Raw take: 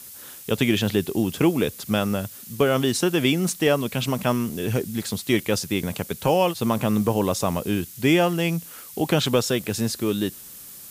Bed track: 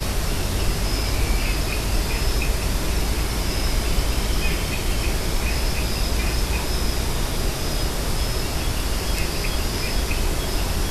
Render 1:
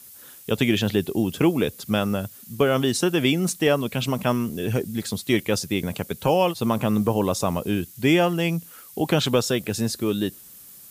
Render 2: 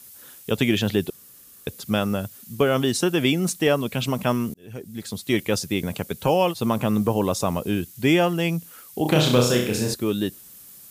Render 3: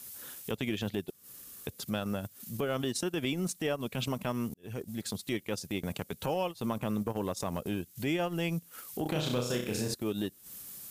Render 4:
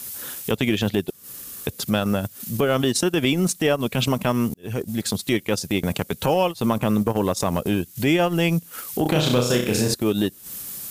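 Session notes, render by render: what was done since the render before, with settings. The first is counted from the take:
noise reduction 6 dB, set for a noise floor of -42 dBFS
1.10–1.67 s: room tone; 4.54–5.43 s: fade in; 9.02–9.94 s: flutter echo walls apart 5.6 m, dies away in 0.57 s
compression 4:1, threshold -29 dBFS, peak gain reduction 13.5 dB; transient shaper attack -6 dB, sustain -10 dB
trim +12 dB

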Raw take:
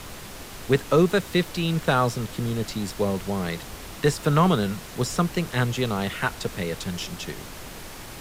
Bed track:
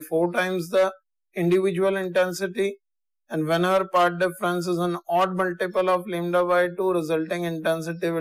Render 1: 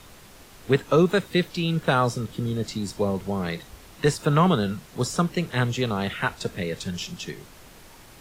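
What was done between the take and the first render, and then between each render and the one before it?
noise print and reduce 9 dB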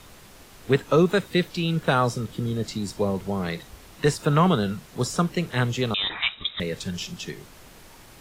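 5.94–6.60 s: frequency inversion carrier 3.8 kHz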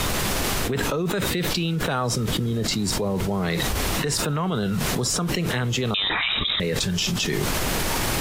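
peak limiter -19.5 dBFS, peak gain reduction 11 dB; level flattener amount 100%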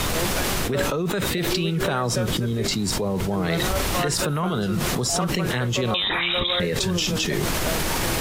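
add bed track -8.5 dB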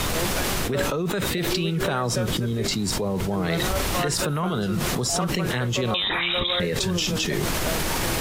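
trim -1 dB

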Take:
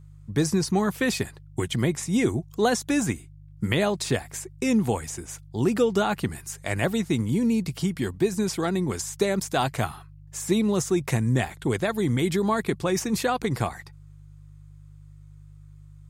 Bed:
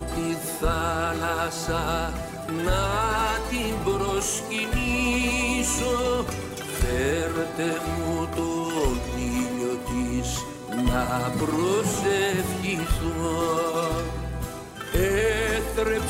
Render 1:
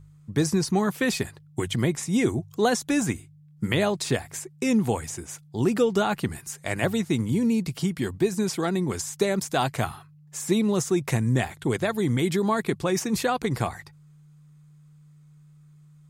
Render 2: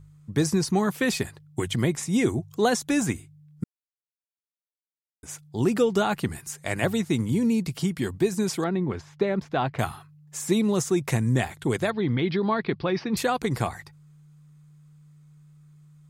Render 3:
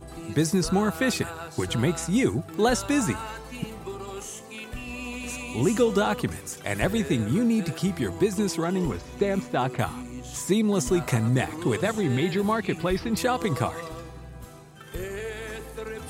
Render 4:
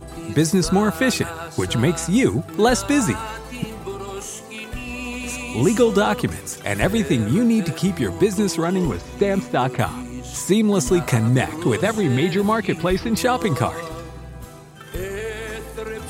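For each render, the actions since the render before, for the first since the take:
de-hum 50 Hz, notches 2
3.64–5.23 s: mute; 8.64–9.79 s: distance through air 320 m; 11.90–13.17 s: elliptic low-pass 4.8 kHz
add bed -11.5 dB
trim +5.5 dB

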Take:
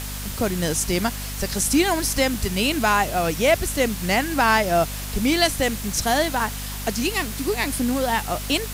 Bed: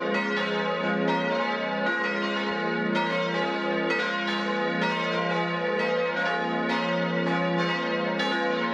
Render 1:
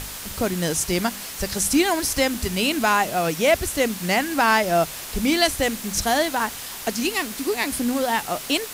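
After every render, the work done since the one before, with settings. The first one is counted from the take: de-hum 50 Hz, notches 5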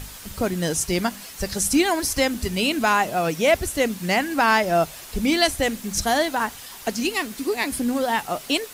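noise reduction 7 dB, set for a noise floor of -35 dBFS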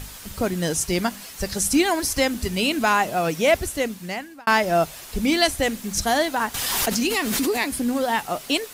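3.56–4.47 s: fade out; 6.54–7.62 s: swell ahead of each attack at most 21 dB/s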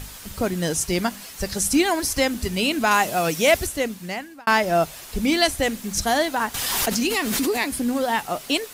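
2.91–3.67 s: peaking EQ 12 kHz +7 dB 2.8 oct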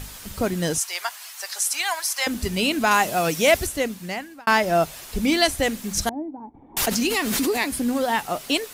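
0.78–2.27 s: high-pass 800 Hz 24 dB/octave; 6.09–6.77 s: cascade formant filter u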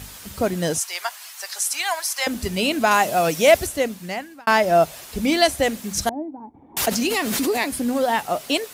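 high-pass 55 Hz; dynamic bell 620 Hz, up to +5 dB, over -36 dBFS, Q 2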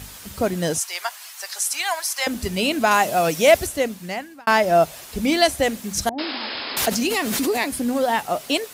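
6.18–6.88 s: painted sound noise 210–5300 Hz -30 dBFS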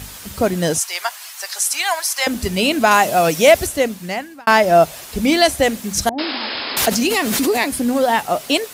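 trim +4.5 dB; peak limiter -1 dBFS, peak gain reduction 3 dB

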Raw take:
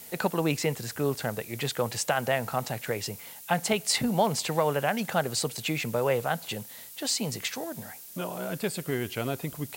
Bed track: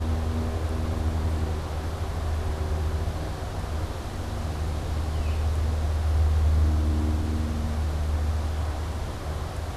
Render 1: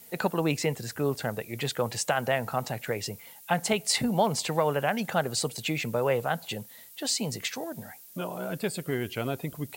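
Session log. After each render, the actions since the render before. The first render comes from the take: noise reduction 7 dB, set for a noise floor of -46 dBFS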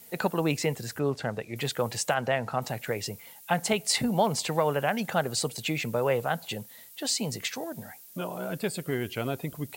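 0.99–1.56 s: distance through air 62 m; 2.14–2.62 s: distance through air 54 m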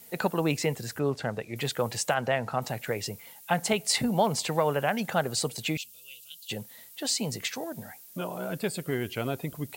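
5.77–6.50 s: elliptic high-pass 2.9 kHz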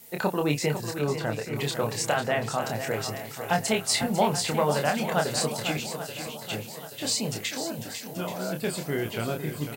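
doubling 27 ms -4.5 dB; shuffle delay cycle 831 ms, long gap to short 1.5:1, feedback 45%, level -9.5 dB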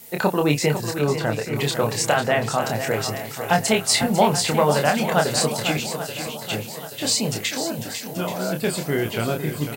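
trim +6 dB

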